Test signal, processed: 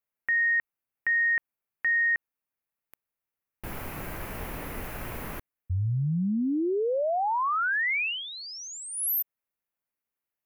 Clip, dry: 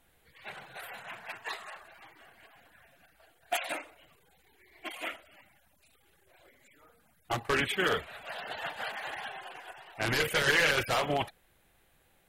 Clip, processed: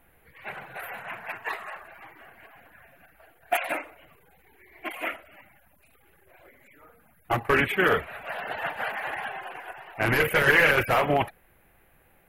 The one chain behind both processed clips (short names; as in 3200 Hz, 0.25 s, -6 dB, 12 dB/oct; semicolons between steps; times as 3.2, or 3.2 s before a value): band shelf 5400 Hz -13.5 dB; gain +7 dB